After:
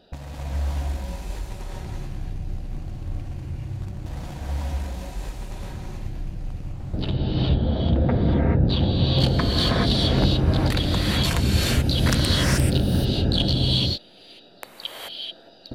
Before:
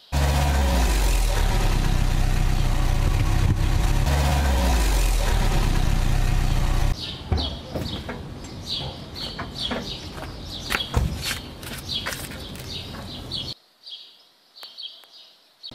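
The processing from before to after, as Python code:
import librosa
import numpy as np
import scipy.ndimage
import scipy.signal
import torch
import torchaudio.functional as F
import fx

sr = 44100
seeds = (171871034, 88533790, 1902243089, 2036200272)

y = fx.wiener(x, sr, points=41)
y = fx.lowpass(y, sr, hz=2100.0, slope=12, at=(6.73, 8.94))
y = fx.over_compress(y, sr, threshold_db=-33.0, ratio=-1.0)
y = fx.rev_gated(y, sr, seeds[0], gate_ms=460, shape='rising', drr_db=-4.0)
y = y * 10.0 ** (2.5 / 20.0)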